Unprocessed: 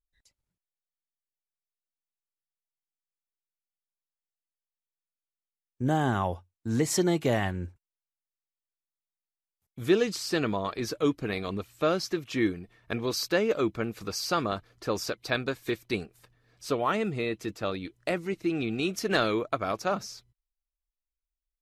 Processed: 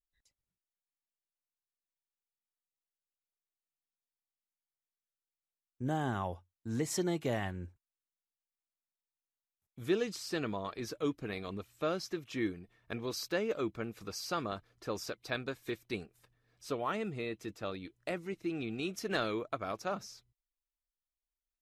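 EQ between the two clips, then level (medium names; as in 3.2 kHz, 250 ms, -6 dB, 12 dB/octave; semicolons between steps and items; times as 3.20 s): band-stop 4.5 kHz, Q 24; -8.0 dB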